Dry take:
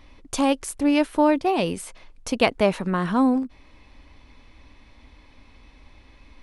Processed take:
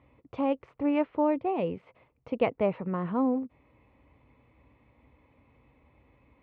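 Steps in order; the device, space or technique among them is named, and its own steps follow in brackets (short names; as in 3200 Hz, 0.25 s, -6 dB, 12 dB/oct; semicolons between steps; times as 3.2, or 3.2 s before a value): 0.65–1.05 bell 1200 Hz +6 dB 1.4 oct; bass cabinet (speaker cabinet 62–2300 Hz, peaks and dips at 130 Hz +9 dB, 490 Hz +6 dB, 1600 Hz -10 dB); gain -8 dB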